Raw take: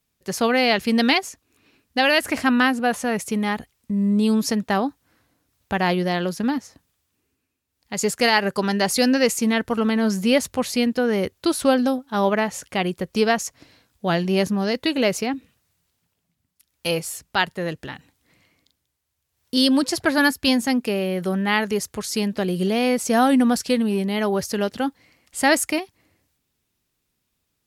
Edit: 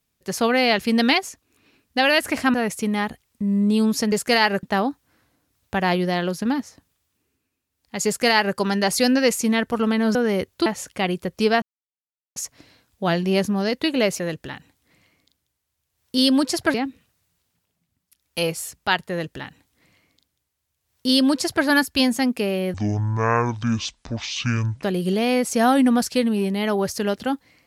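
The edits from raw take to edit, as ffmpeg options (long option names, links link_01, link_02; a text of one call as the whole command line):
ffmpeg -i in.wav -filter_complex "[0:a]asplit=11[link_01][link_02][link_03][link_04][link_05][link_06][link_07][link_08][link_09][link_10][link_11];[link_01]atrim=end=2.542[link_12];[link_02]atrim=start=3.028:end=4.612[link_13];[link_03]atrim=start=8.038:end=8.552[link_14];[link_04]atrim=start=4.608:end=10.132[link_15];[link_05]atrim=start=10.988:end=11.502[link_16];[link_06]atrim=start=12.418:end=13.38,asetpts=PTS-STARTPTS,afade=type=out:start_time=0.958:duration=0.004:curve=hsin,apad=pad_dur=0.74[link_17];[link_07]atrim=start=13.38:end=15.222,asetpts=PTS-STARTPTS,afade=type=in:duration=0.004:curve=hsin[link_18];[link_08]atrim=start=17.588:end=20.132[link_19];[link_09]atrim=start=15.218:end=21.224[link_20];[link_10]atrim=start=21.22:end=22.37,asetpts=PTS-STARTPTS,asetrate=24255,aresample=44100,atrim=end_sample=92209,asetpts=PTS-STARTPTS[link_21];[link_11]atrim=start=22.366[link_22];[link_12][link_13]acrossfade=duration=0.004:curve1=hsin:curve2=hsin[link_23];[link_23][link_14]acrossfade=duration=0.004:curve1=hsin:curve2=hsin[link_24];[link_24][link_15]acrossfade=duration=0.004:curve1=hsin:curve2=hsin[link_25];[link_25][link_16]acrossfade=duration=0.004:curve1=hsin:curve2=hsin[link_26];[link_17][link_18]concat=n=2:v=0:a=1[link_27];[link_26][link_27]acrossfade=duration=0.004:curve1=hsin:curve2=hsin[link_28];[link_28][link_19]acrossfade=duration=0.004:curve1=hsin:curve2=hsin[link_29];[link_29][link_20]acrossfade=duration=0.004:curve1=hsin:curve2=hsin[link_30];[link_30][link_21]acrossfade=duration=0.004:curve1=hsin:curve2=hsin[link_31];[link_31][link_22]acrossfade=duration=0.004:curve1=hsin:curve2=hsin" out.wav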